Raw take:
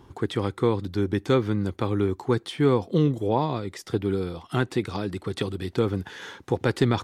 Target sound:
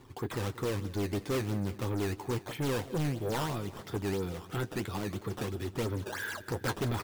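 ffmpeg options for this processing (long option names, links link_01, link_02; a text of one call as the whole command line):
ffmpeg -i in.wav -filter_complex "[0:a]asettb=1/sr,asplit=3[link_01][link_02][link_03];[link_01]atrim=end=6.024[link_04];[link_02]atrim=start=6.02:end=6.73,asetpts=PTS-STARTPTS,afade=type=in:duration=0.004:curve=qsin,afade=type=out:start_time=0.706:duration=0.004:curve=qsin,equalizer=frequency=1600:width_type=o:width=0.23:gain=14.5[link_05];[link_03]atrim=start=6.726[link_06];[link_04][link_05]acrossfade=duration=0.004:curve1=hsin:curve2=qsin[link_07];[link_07][link_06]acrossfade=duration=0.004:curve1=qsin:curve2=hsin,acrusher=samples=12:mix=1:aa=0.000001:lfo=1:lforange=19.2:lforate=3,flanger=delay=7.7:depth=2.7:regen=-37:speed=0.34:shape=triangular,asoftclip=type=tanh:threshold=-27.5dB,asplit=2[link_08][link_09];[link_09]aecho=0:1:183|366|549|732|915:0.126|0.0743|0.0438|0.0259|0.0153[link_10];[link_08][link_10]amix=inputs=2:normalize=0" out.wav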